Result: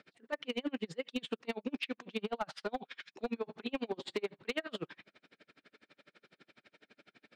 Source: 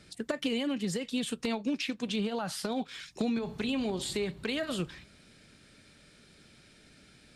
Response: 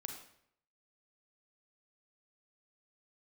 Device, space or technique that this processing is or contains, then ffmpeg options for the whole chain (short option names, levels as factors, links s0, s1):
helicopter radio: -af "highpass=330,lowpass=2700,aeval=exprs='val(0)*pow(10,-37*(0.5-0.5*cos(2*PI*12*n/s))/20)':c=same,asoftclip=type=hard:threshold=0.0224,volume=1.88"